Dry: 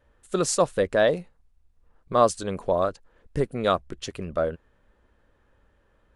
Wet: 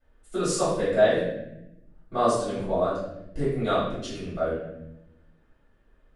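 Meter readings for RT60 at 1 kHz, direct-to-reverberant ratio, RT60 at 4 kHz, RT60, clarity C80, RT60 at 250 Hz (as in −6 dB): 0.70 s, −12.5 dB, 0.65 s, 0.85 s, 4.0 dB, 1.4 s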